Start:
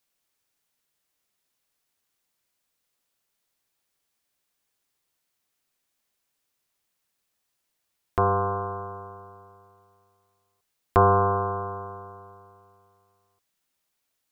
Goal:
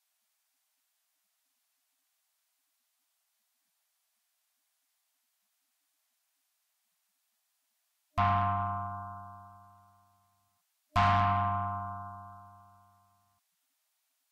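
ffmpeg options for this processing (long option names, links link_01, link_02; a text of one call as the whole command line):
ffmpeg -i in.wav -af "asoftclip=type=tanh:threshold=-20.5dB,afftfilt=real='re*(1-between(b*sr/4096,300,610))':imag='im*(1-between(b*sr/4096,300,610))':win_size=4096:overlap=0.75" -ar 48000 -c:a libvorbis -b:a 48k out.ogg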